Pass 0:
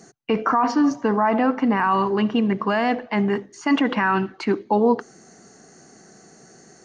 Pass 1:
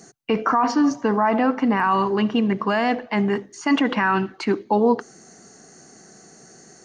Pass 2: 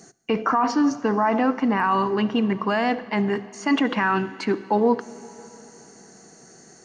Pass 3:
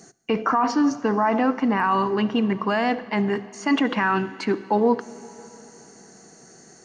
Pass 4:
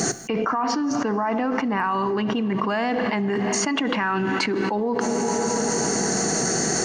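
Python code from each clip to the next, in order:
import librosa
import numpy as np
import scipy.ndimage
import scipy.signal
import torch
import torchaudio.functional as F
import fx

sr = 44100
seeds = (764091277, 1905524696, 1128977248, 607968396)

y1 = fx.high_shelf(x, sr, hz=5100.0, db=5.5)
y2 = fx.rev_plate(y1, sr, seeds[0], rt60_s=3.6, hf_ratio=1.0, predelay_ms=0, drr_db=16.5)
y2 = y2 * librosa.db_to_amplitude(-1.5)
y3 = y2
y4 = fx.env_flatten(y3, sr, amount_pct=100)
y4 = y4 * librosa.db_to_amplitude(-7.0)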